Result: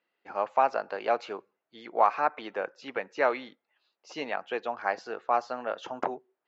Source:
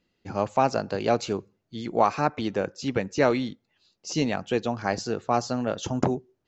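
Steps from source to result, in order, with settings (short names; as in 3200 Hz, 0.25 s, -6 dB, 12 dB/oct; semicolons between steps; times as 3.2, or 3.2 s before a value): BPF 710–2100 Hz; gain +1.5 dB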